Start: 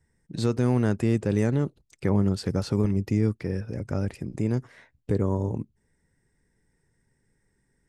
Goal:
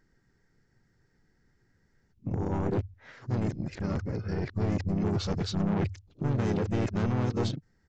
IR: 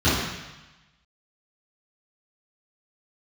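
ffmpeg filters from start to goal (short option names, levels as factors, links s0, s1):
-filter_complex "[0:a]areverse,bandreject=f=50:t=h:w=6,bandreject=f=100:t=h:w=6,aresample=16000,asoftclip=type=tanh:threshold=0.0501,aresample=44100,asplit=2[s0][s1];[s1]asetrate=37084,aresample=44100,atempo=1.18921,volume=0.794[s2];[s0][s2]amix=inputs=2:normalize=0"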